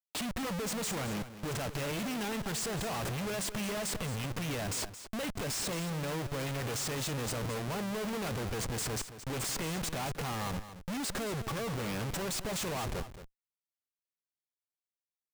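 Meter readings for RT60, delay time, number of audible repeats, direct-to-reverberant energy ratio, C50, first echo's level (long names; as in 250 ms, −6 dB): no reverb audible, 222 ms, 1, no reverb audible, no reverb audible, −12.5 dB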